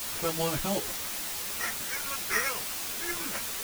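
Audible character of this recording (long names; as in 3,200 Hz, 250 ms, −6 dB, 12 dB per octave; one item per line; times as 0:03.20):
aliases and images of a low sample rate 3,800 Hz
tremolo saw up 1.1 Hz, depth 100%
a quantiser's noise floor 6 bits, dither triangular
a shimmering, thickened sound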